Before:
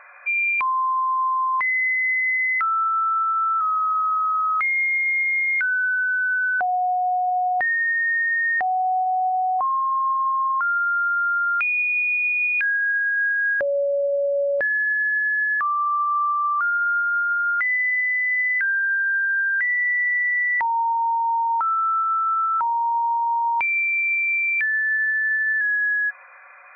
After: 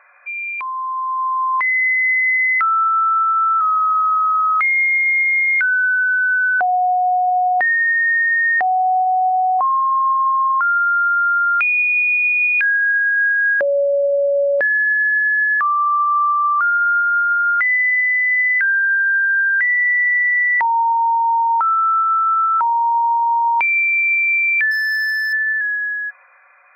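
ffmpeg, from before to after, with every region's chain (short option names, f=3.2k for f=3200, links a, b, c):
-filter_complex "[0:a]asettb=1/sr,asplit=3[a][b][c];[a]atrim=end=24.714[d];[b]atrim=start=24.71:end=25.33,asetpts=PTS-STARTPTS,afade=t=in:d=0.004:c=qsin,afade=t=out:st=0.616:d=0.004:c=qsin,equalizer=f=240:t=o:w=0.51:g=9,asoftclip=type=hard:threshold=-22.5dB[e];[c]atrim=start=25.326[f];[d][e]acrossfade=d=0.004:c1=hsin:c2=qsin[g];[g][f]acrossfade=d=0.004:c1=qsin:c2=hsin,highpass=210,dynaudnorm=f=120:g=21:m=10dB,volume=-4.5dB"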